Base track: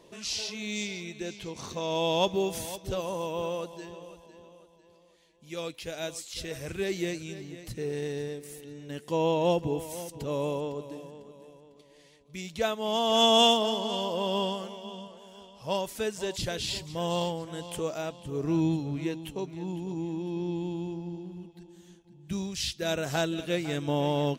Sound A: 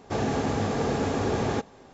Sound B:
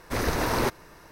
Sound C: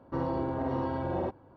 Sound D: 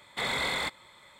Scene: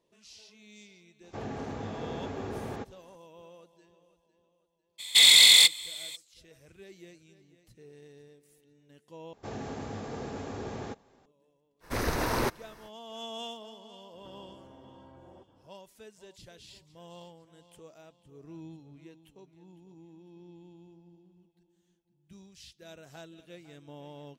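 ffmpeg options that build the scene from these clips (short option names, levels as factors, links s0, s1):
-filter_complex "[1:a]asplit=2[s0][s1];[0:a]volume=0.106[s2];[s0]acrossover=split=3600[s3][s4];[s4]acompressor=threshold=0.00316:ratio=4:attack=1:release=60[s5];[s3][s5]amix=inputs=2:normalize=0[s6];[4:a]aexciter=amount=12.6:drive=8.4:freq=2300[s7];[3:a]acompressor=threshold=0.00631:ratio=6:attack=3.2:release=140:knee=1:detection=peak[s8];[s2]asplit=2[s9][s10];[s9]atrim=end=9.334[s11];[s1]atrim=end=1.93,asetpts=PTS-STARTPTS,volume=0.251[s12];[s10]atrim=start=11.256[s13];[s6]atrim=end=1.93,asetpts=PTS-STARTPTS,volume=0.282,afade=t=in:d=0.004:c=hsin,afade=t=out:st=1.926:d=0.004:c=hsin,adelay=1230[s14];[s7]atrim=end=1.19,asetpts=PTS-STARTPTS,volume=0.447,afade=t=in:d=0.02,afade=t=out:st=1.17:d=0.02,adelay=4980[s15];[2:a]atrim=end=1.11,asetpts=PTS-STARTPTS,volume=0.668,afade=t=in:d=0.05,afade=t=out:st=1.06:d=0.05,adelay=11800[s16];[s8]atrim=end=1.56,asetpts=PTS-STARTPTS,volume=0.447,afade=t=in:d=0.004:c=hsin,afade=t=out:st=1.556:d=0.004:c=hsin,adelay=14130[s17];[s11][s12]acrossfade=d=0.004:c1=hsin:c2=hsin[s18];[s18][s13]acrossfade=d=0.004:c1=hsin:c2=hsin[s19];[s19][s14][s15][s16][s17]amix=inputs=5:normalize=0"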